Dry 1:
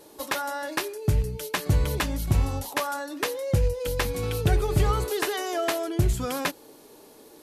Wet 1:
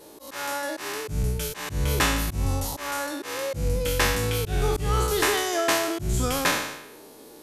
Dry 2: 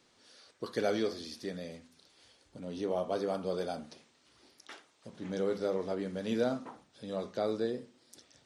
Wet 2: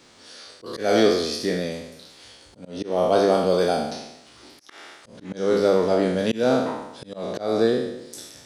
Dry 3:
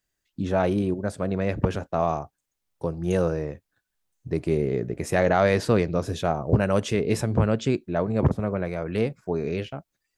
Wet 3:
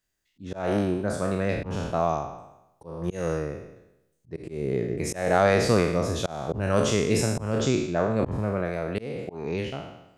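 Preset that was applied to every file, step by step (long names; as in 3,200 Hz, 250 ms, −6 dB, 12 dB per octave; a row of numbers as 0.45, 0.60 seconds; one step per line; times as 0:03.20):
peak hold with a decay on every bin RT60 0.89 s
dynamic equaliser 6,600 Hz, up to +4 dB, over −46 dBFS, Q 1.4
volume swells 231 ms
normalise the peak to −6 dBFS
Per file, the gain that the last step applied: +1.5, +12.5, −1.5 decibels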